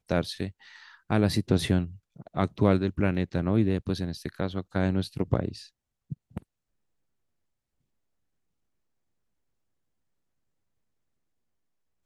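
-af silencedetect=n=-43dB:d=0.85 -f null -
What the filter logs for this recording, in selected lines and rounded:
silence_start: 6.38
silence_end: 12.06 | silence_duration: 5.67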